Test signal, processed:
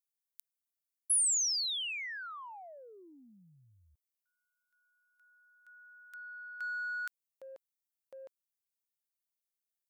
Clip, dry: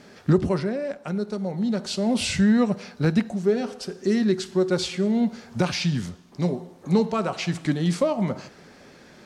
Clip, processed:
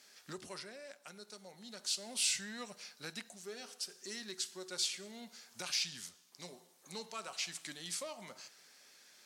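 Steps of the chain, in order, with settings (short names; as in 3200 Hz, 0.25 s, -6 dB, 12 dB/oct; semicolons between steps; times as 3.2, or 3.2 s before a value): low shelf 130 Hz -10 dB; in parallel at -12 dB: soft clip -21.5 dBFS; on the sum: pre-emphasis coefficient 0.97; gain -2.5 dB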